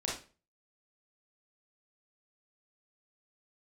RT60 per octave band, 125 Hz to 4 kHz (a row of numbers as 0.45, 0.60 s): 0.45, 0.40, 0.40, 0.35, 0.35, 0.30 s